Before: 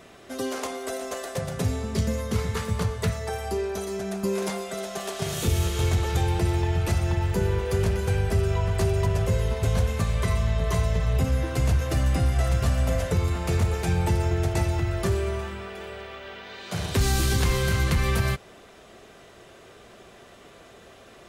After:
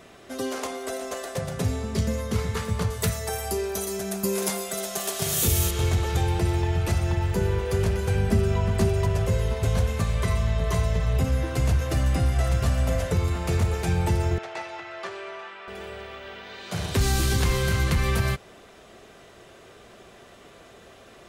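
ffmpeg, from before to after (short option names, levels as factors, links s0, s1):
-filter_complex "[0:a]asettb=1/sr,asplit=3[s0][s1][s2];[s0]atrim=end=2.904[s3];[s1]atrim=start=2.9:end=5.71,asetpts=PTS-STARTPTS,afade=t=in:d=0.004:c=qsin,afade=t=out:st=2.806:d=0.004:c=qsin,aemphasis=mode=production:type=50fm[s4];[s2]atrim=start=5.706[s5];[s3][s4]acrossfade=d=0.004:c1=hsin:c2=qsin[s6];[s6][s5]acrossfade=d=0.004:c1=qsin:c2=hsin,asettb=1/sr,asplit=3[s7][s8][s9];[s7]atrim=end=8.154[s10];[s8]atrim=start=8.15:end=8.89,asetpts=PTS-STARTPTS,afade=t=in:d=0.004:c=qsin,afade=t=out:st=0.736:d=0.004:c=qsin,equalizer=f=220:t=o:w=0.58:g=12[s11];[s9]atrim=start=8.886[s12];[s10][s11]acrossfade=d=0.004:c1=hsin:c2=qsin[s13];[s13][s12]acrossfade=d=0.004:c1=qsin:c2=hsin,asettb=1/sr,asplit=3[s14][s15][s16];[s14]atrim=end=14.384[s17];[s15]atrim=start=14.38:end=15.68,asetpts=PTS-STARTPTS,afade=t=in:d=0.004:c=qsin,afade=t=out:st=1.296:d=0.004:c=qsin,highpass=720,lowpass=3600[s18];[s16]atrim=start=15.676[s19];[s17][s18]acrossfade=d=0.004:c1=hsin:c2=qsin[s20];[s20][s19]acrossfade=d=0.004:c1=qsin:c2=hsin"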